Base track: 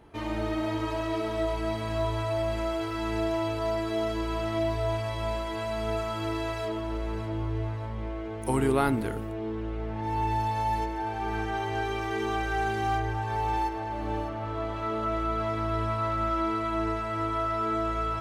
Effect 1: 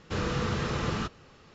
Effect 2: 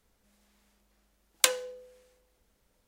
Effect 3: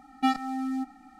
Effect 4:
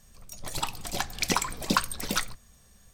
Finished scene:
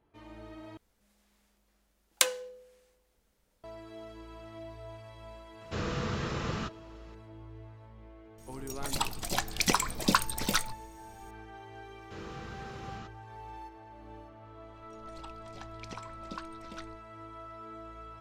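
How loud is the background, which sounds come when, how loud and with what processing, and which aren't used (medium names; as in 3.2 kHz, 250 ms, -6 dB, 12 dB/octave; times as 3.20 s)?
base track -17.5 dB
0.77 s: replace with 2 -2 dB
5.61 s: add 1 -4 dB
8.38 s: add 4 -0.5 dB
12.00 s: add 1 -15.5 dB
14.61 s: add 4 -18 dB + Bessel low-pass 4.2 kHz
not used: 3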